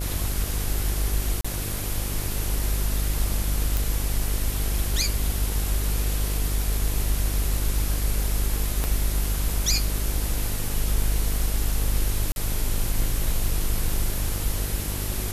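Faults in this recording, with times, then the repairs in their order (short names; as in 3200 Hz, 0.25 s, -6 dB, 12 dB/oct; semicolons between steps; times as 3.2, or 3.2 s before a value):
buzz 50 Hz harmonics 17 -29 dBFS
1.41–1.45 gap 35 ms
3.77 pop
8.84 pop -11 dBFS
12.32–12.36 gap 41 ms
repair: de-click; de-hum 50 Hz, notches 17; interpolate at 1.41, 35 ms; interpolate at 12.32, 41 ms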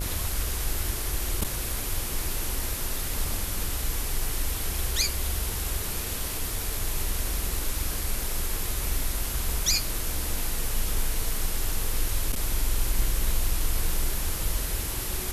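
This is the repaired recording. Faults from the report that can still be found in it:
8.84 pop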